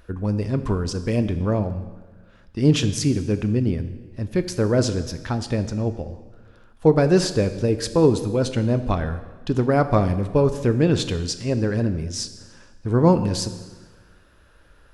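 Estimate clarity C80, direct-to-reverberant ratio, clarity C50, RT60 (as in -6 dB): 13.5 dB, 9.5 dB, 12.0 dB, 1.3 s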